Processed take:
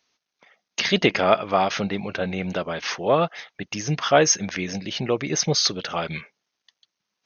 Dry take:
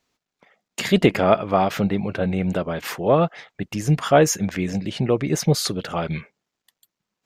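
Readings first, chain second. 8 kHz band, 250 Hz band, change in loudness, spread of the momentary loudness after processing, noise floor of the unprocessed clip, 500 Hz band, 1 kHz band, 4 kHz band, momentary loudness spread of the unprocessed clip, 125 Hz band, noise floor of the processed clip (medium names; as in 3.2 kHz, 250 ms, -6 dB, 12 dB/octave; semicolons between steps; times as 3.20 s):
+4.0 dB, -5.5 dB, -1.5 dB, 11 LU, -84 dBFS, -2.5 dB, -0.5 dB, +5.0 dB, 11 LU, -7.0 dB, -82 dBFS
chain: brick-wall FIR low-pass 6.6 kHz; tilt EQ +2.5 dB/octave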